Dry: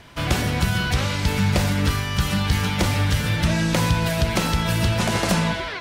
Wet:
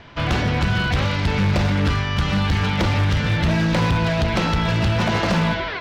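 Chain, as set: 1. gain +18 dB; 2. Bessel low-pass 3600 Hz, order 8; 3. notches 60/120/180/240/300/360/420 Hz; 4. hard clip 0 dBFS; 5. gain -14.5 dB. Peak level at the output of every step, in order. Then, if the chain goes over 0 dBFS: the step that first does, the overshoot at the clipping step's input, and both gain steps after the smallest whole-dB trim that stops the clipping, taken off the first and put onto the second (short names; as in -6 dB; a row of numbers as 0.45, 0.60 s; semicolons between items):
+8.5, +8.5, +8.5, 0.0, -14.5 dBFS; step 1, 8.5 dB; step 1 +9 dB, step 5 -5.5 dB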